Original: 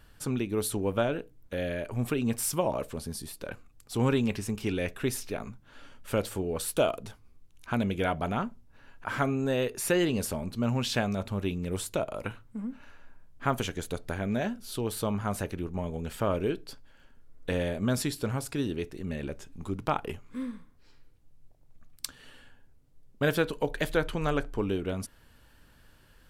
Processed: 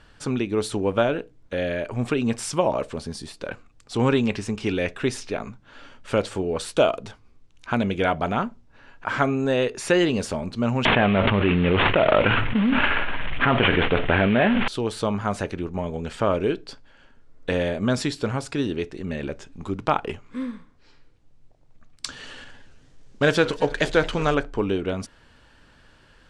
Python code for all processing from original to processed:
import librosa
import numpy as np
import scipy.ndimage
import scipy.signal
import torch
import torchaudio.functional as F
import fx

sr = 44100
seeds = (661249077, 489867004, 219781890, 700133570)

y = fx.chain(x, sr, fx.cvsd(bps=16000),
    fx.high_shelf(hz=2300.0, db=7.5),
    fx.env_flatten(amount_pct=100), at=(10.85, 14.68))
y = fx.chain(y, sr, fx.law_mismatch(coded='mu'),
    fx.peak_eq(hz=6300.0, db=5.0, octaves=1.0),
    fx.echo_warbled(ms=222, feedback_pct=36, rate_hz=2.8, cents=216, wet_db=-18.0), at=(22.05, 24.35))
y = scipy.signal.sosfilt(scipy.signal.bessel(8, 5700.0, 'lowpass', norm='mag', fs=sr, output='sos'), y)
y = fx.low_shelf(y, sr, hz=190.0, db=-6.0)
y = y * 10.0 ** (7.5 / 20.0)